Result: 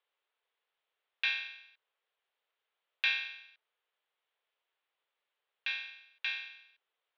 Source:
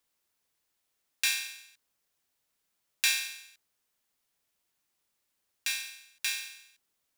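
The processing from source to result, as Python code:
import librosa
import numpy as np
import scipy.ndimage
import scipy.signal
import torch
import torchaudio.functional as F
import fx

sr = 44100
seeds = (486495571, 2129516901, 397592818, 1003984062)

y = scipy.signal.sosfilt(scipy.signal.ellip(3, 1.0, 40, [430.0, 3400.0], 'bandpass', fs=sr, output='sos'), x)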